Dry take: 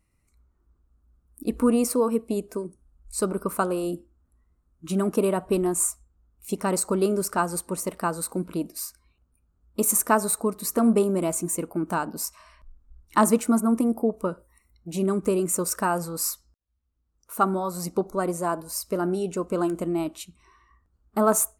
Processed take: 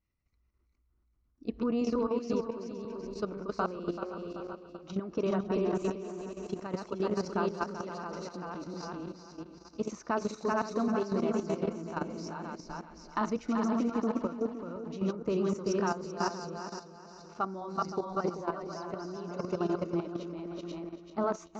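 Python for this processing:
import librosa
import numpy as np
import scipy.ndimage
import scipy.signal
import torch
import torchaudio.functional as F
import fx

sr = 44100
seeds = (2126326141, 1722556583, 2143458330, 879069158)

y = fx.reverse_delay_fb(x, sr, ms=259, feedback_pct=42, wet_db=-2)
y = scipy.signal.sosfilt(scipy.signal.butter(12, 6200.0, 'lowpass', fs=sr, output='sos'), y)
y = fx.echo_feedback(y, sr, ms=384, feedback_pct=37, wet_db=-5)
y = fx.level_steps(y, sr, step_db=11)
y = y * librosa.db_to_amplitude(-6.5)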